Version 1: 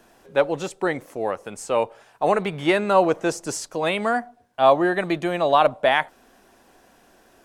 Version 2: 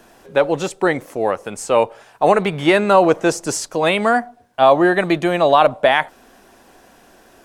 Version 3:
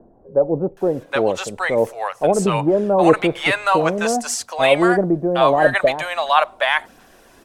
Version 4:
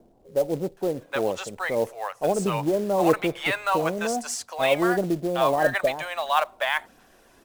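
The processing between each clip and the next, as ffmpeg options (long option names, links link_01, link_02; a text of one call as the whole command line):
ffmpeg -i in.wav -af "alimiter=level_in=7.5dB:limit=-1dB:release=50:level=0:latency=1,volume=-1dB" out.wav
ffmpeg -i in.wav -filter_complex "[0:a]aphaser=in_gain=1:out_gain=1:delay=2:decay=0.3:speed=1.6:type=sinusoidal,acrossover=split=740[link_01][link_02];[link_02]adelay=770[link_03];[link_01][link_03]amix=inputs=2:normalize=0" out.wav
ffmpeg -i in.wav -af "acrusher=bits=5:mode=log:mix=0:aa=0.000001,volume=-7dB" out.wav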